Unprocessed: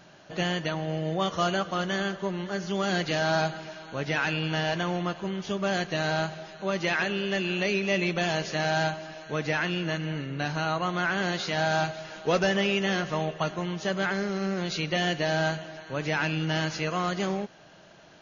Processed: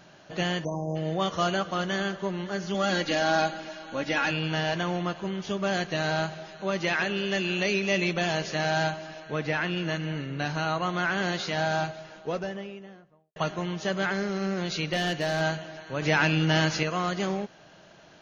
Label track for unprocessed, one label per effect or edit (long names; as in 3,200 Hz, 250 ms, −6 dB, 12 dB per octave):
0.640000	0.960000	time-frequency box erased 1,100–5,000 Hz
2.740000	4.310000	comb filter 3.6 ms
7.160000	8.130000	high-shelf EQ 5,200 Hz +6 dB
9.200000	9.770000	high-frequency loss of the air 89 metres
11.300000	13.360000	fade out and dull
14.930000	15.410000	hard clipping −21 dBFS
16.020000	16.830000	clip gain +4.5 dB